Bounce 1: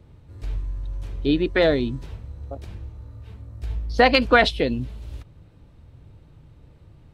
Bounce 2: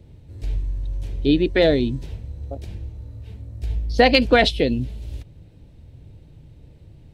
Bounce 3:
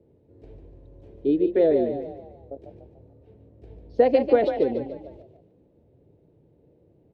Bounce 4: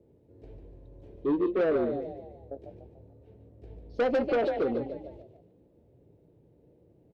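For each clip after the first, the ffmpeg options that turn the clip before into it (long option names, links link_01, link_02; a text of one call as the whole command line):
ffmpeg -i in.wav -af "equalizer=frequency=1200:width_type=o:width=0.87:gain=-12.5,volume=3.5dB" out.wav
ffmpeg -i in.wav -filter_complex "[0:a]bandpass=frequency=430:width_type=q:width=1.9:csg=0,asplit=2[link_01][link_02];[link_02]asplit=5[link_03][link_04][link_05][link_06][link_07];[link_03]adelay=146,afreqshift=37,volume=-8dB[link_08];[link_04]adelay=292,afreqshift=74,volume=-15.3dB[link_09];[link_05]adelay=438,afreqshift=111,volume=-22.7dB[link_10];[link_06]adelay=584,afreqshift=148,volume=-30dB[link_11];[link_07]adelay=730,afreqshift=185,volume=-37.3dB[link_12];[link_08][link_09][link_10][link_11][link_12]amix=inputs=5:normalize=0[link_13];[link_01][link_13]amix=inputs=2:normalize=0" out.wav
ffmpeg -i in.wav -filter_complex "[0:a]asoftclip=type=tanh:threshold=-20dB,asplit=2[link_01][link_02];[link_02]adelay=17,volume=-14dB[link_03];[link_01][link_03]amix=inputs=2:normalize=0,volume=-2dB" out.wav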